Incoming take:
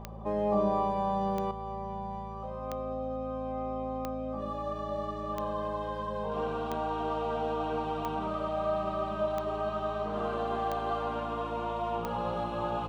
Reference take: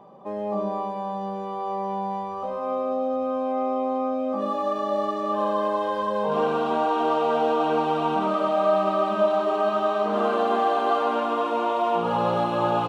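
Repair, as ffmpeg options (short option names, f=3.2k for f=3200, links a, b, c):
-af "adeclick=t=4,bandreject=f=54.5:t=h:w=4,bandreject=f=109:t=h:w=4,bandreject=f=163.5:t=h:w=4,bandreject=f=218:t=h:w=4,asetnsamples=n=441:p=0,asendcmd='1.51 volume volume 10dB',volume=0dB"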